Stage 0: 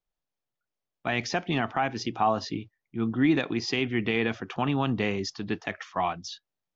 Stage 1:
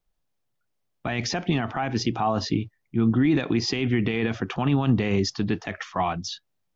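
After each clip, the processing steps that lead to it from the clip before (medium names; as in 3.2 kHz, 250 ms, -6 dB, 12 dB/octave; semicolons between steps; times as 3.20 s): peak limiter -21.5 dBFS, peak gain reduction 8.5 dB; bass shelf 220 Hz +8 dB; trim +5.5 dB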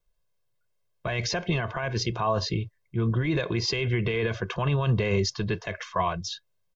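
comb 1.9 ms, depth 88%; trim -2.5 dB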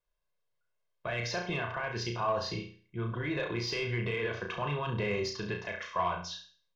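flutter echo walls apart 5.8 m, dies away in 0.43 s; overdrive pedal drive 10 dB, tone 2.5 kHz, clips at -10.5 dBFS; trim -8 dB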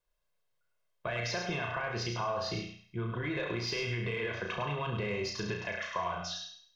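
compression, threshold -33 dBFS, peak gain reduction 7.5 dB; thinning echo 103 ms, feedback 29%, high-pass 560 Hz, level -5.5 dB; trim +2 dB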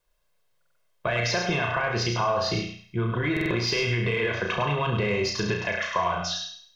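buffer glitch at 0.57/3.32 s, samples 2048, times 3; trim +9 dB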